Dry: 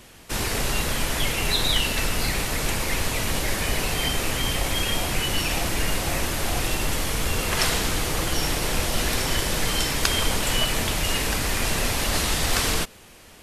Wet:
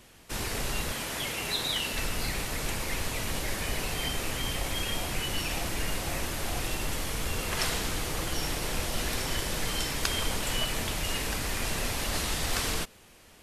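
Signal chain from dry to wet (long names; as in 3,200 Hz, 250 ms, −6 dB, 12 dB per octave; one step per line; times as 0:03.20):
0:00.91–0:01.93: high-pass filter 160 Hz 6 dB per octave
level −7 dB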